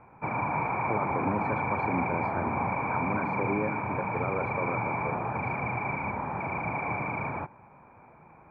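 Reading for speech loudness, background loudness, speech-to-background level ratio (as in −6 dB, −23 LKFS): −35.0 LKFS, −31.0 LKFS, −4.0 dB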